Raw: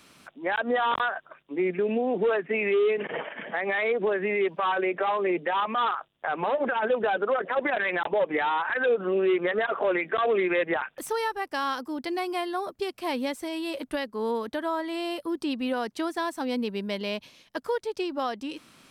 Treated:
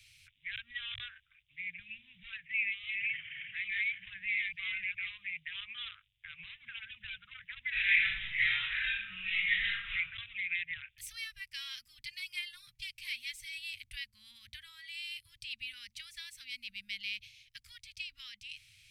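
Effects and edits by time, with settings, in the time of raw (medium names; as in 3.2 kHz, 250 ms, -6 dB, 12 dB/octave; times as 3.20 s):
2.41–5.09 s: chunks repeated in reverse 423 ms, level -2.5 dB
7.69–9.93 s: reverb throw, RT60 0.84 s, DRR -10 dB
11.56–13.58 s: comb 5.7 ms, depth 57%
whole clip: Chebyshev band-stop 110–2200 Hz, order 4; treble shelf 2.9 kHz -9.5 dB; de-hum 74.41 Hz, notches 10; trim +3 dB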